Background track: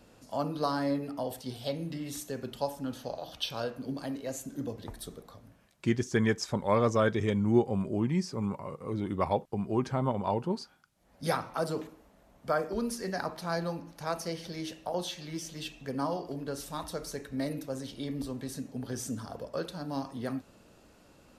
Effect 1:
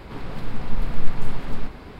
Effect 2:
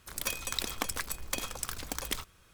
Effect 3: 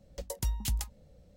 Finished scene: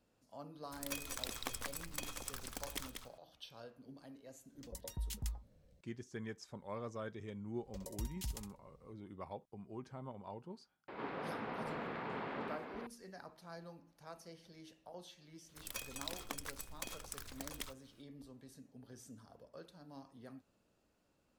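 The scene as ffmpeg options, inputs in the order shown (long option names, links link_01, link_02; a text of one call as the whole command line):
ffmpeg -i bed.wav -i cue0.wav -i cue1.wav -i cue2.wav -filter_complex "[2:a]asplit=2[link_01][link_02];[3:a]asplit=2[link_03][link_04];[0:a]volume=-18.5dB[link_05];[link_01]aecho=1:1:189:0.501[link_06];[link_03]acrossover=split=1000[link_07][link_08];[link_07]adelay=90[link_09];[link_09][link_08]amix=inputs=2:normalize=0[link_10];[link_04]aecho=1:1:64|128|192:0.447|0.0804|0.0145[link_11];[1:a]highpass=320,lowpass=2400[link_12];[link_06]atrim=end=2.53,asetpts=PTS-STARTPTS,volume=-9.5dB,afade=type=in:duration=0.004:curve=hsin,afade=type=out:start_time=2.526:duration=0.004:curve=hsin,adelay=650[link_13];[link_10]atrim=end=1.36,asetpts=PTS-STARTPTS,volume=-9.5dB,afade=type=in:duration=0.004:curve=hsin,afade=type=out:start_time=1.356:duration=0.004:curve=hsin,adelay=196245S[link_14];[link_11]atrim=end=1.36,asetpts=PTS-STARTPTS,volume=-11dB,afade=type=in:duration=0.004:curve=hsin,afade=type=out:start_time=1.356:duration=0.004:curve=hsin,adelay=7560[link_15];[link_12]atrim=end=1.99,asetpts=PTS-STARTPTS,volume=-3dB,afade=type=in:duration=0.004:curve=hsin,afade=type=out:start_time=1.986:duration=0.004:curve=hsin,adelay=10880[link_16];[link_02]atrim=end=2.53,asetpts=PTS-STARTPTS,volume=-11dB,afade=type=in:duration=0.004:curve=hsin,afade=type=out:start_time=2.526:duration=0.004:curve=hsin,adelay=15490[link_17];[link_05][link_13][link_14][link_15][link_16][link_17]amix=inputs=6:normalize=0" out.wav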